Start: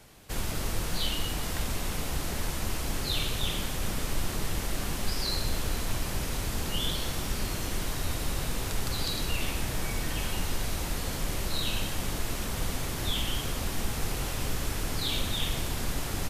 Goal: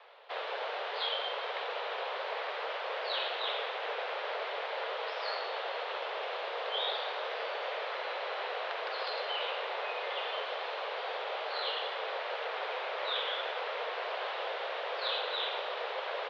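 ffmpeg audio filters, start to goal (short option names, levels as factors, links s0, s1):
-filter_complex "[0:a]asplit=2[s0][s1];[s1]acrusher=samples=14:mix=1:aa=0.000001:lfo=1:lforange=8.4:lforate=0.21,volume=0.355[s2];[s0][s2]amix=inputs=2:normalize=0,highpass=f=230:t=q:w=0.5412,highpass=f=230:t=q:w=1.307,lowpass=f=3500:t=q:w=0.5176,lowpass=f=3500:t=q:w=0.7071,lowpass=f=3500:t=q:w=1.932,afreqshift=250"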